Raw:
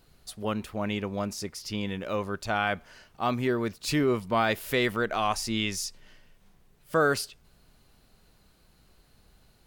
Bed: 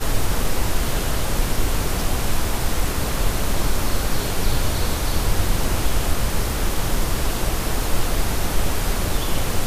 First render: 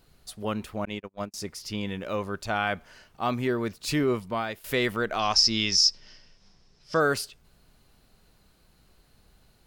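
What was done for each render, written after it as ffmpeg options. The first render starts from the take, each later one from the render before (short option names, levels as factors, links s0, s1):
-filter_complex "[0:a]asettb=1/sr,asplit=3[s0][s1][s2];[s0]atrim=end=0.854[s3];[s1]atrim=start=0.85:end=1.34,asetpts=PTS-STARTPTS,afade=t=in:d=0.004:c=qsin,afade=t=out:st=0.486:d=0.004:c=qsin,agate=range=0.00708:threshold=0.0316:ratio=16:release=100:detection=peak[s4];[s2]atrim=start=1.336[s5];[s3][s4]acrossfade=d=0.004:c1=hsin:c2=qsin[s6];[s6][s5]acrossfade=d=0.004:c1=qsin:c2=hsin,asettb=1/sr,asplit=3[s7][s8][s9];[s7]atrim=end=5.194[s10];[s8]atrim=start=5.19:end=7,asetpts=PTS-STARTPTS,afade=t=in:d=0.004:c=qsin,afade=t=out:st=1.806:d=0.004:c=qsin,lowpass=f=5300:t=q:w=10[s11];[s9]atrim=start=6.996[s12];[s10][s11]acrossfade=d=0.004:c1=hsin:c2=qsin[s13];[s13][s12]acrossfade=d=0.004:c1=qsin:c2=hsin,asplit=2[s14][s15];[s14]atrim=end=4.64,asetpts=PTS-STARTPTS,afade=t=out:st=4.11:d=0.53:silence=0.188365[s16];[s15]atrim=start=4.64,asetpts=PTS-STARTPTS,afade=t=in:d=0.004:c=hsin:silence=0.188365[s17];[s16][s17]concat=n=2:v=0:a=1"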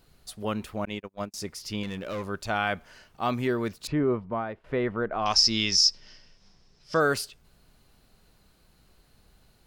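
-filter_complex "[0:a]asettb=1/sr,asplit=3[s0][s1][s2];[s0]atrim=end=1.834[s3];[s1]atrim=start=1.83:end=2.27,asetpts=PTS-STARTPTS,afade=t=in:d=0.004:c=qsin,afade=t=out:st=0.436:d=0.004:c=qsin,asoftclip=type=hard:threshold=0.0335[s4];[s2]atrim=start=2.266[s5];[s3][s4]acrossfade=d=0.004:c1=hsin:c2=qsin[s6];[s6][s5]acrossfade=d=0.004:c1=qsin:c2=hsin,asettb=1/sr,asplit=3[s7][s8][s9];[s7]atrim=end=3.874[s10];[s8]atrim=start=3.87:end=5.26,asetpts=PTS-STARTPTS,afade=t=in:d=0.004:c=qsin,afade=t=out:st=1.386:d=0.004:c=qsin,lowpass=1300[s11];[s9]atrim=start=5.256[s12];[s10][s11]acrossfade=d=0.004:c1=hsin:c2=qsin[s13];[s13][s12]acrossfade=d=0.004:c1=qsin:c2=hsin"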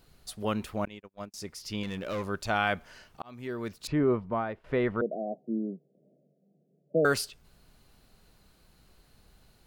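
-filter_complex "[0:a]asettb=1/sr,asplit=3[s0][s1][s2];[s0]atrim=end=5.014[s3];[s1]atrim=start=5.01:end=7.05,asetpts=PTS-STARTPTS,afade=t=in:d=0.004:c=qsin,afade=t=out:st=2.036:d=0.004:c=qsin,asuperpass=centerf=310:order=20:qfactor=0.57[s4];[s2]atrim=start=7.046[s5];[s3][s4]acrossfade=d=0.004:c1=hsin:c2=qsin[s6];[s6][s5]acrossfade=d=0.004:c1=qsin:c2=hsin,asplit=3[s7][s8][s9];[s7]atrim=end=0.88,asetpts=PTS-STARTPTS,afade=t=out:st=0.876:d=0.004:c=hsin:silence=0.237137[s10];[s8]atrim=start=0.88:end=3.22,asetpts=PTS-STARTPTS,afade=t=in:d=1.24:silence=0.237137,afade=t=out:st=2.336:d=0.004:c=hsin[s11];[s9]atrim=start=3.22,asetpts=PTS-STARTPTS,afade=t=in:d=0.83[s12];[s10][s11][s12]concat=n=3:v=0:a=1"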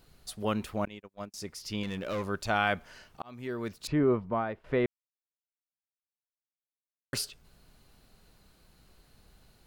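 -filter_complex "[0:a]asplit=3[s0][s1][s2];[s0]atrim=end=4.86,asetpts=PTS-STARTPTS,afade=t=out:st=4.856:d=0.004:c=hsin[s3];[s1]atrim=start=4.86:end=7.13,asetpts=PTS-STARTPTS,volume=0[s4];[s2]atrim=start=7.13,asetpts=PTS-STARTPTS,afade=t=in:d=0.004:c=hsin[s5];[s3][s4][s5]concat=n=3:v=0:a=1"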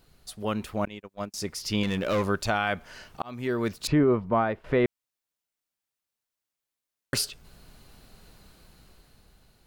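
-af "dynaudnorm=f=180:g=11:m=2.51,alimiter=limit=0.211:level=0:latency=1:release=378"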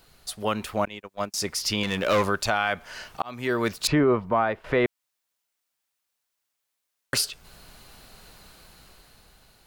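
-filter_complex "[0:a]acrossover=split=530[s0][s1];[s1]acontrast=84[s2];[s0][s2]amix=inputs=2:normalize=0,alimiter=limit=0.251:level=0:latency=1:release=306"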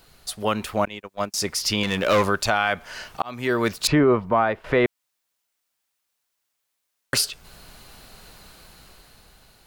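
-af "volume=1.41"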